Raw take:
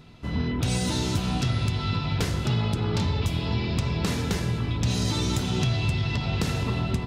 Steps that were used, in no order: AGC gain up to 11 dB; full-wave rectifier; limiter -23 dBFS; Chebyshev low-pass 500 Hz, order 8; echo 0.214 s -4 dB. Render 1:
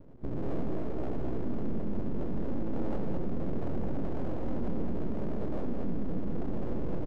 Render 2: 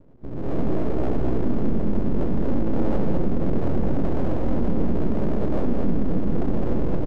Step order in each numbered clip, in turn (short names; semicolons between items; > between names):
AGC > limiter > Chebyshev low-pass > full-wave rectifier > echo; limiter > Chebyshev low-pass > full-wave rectifier > echo > AGC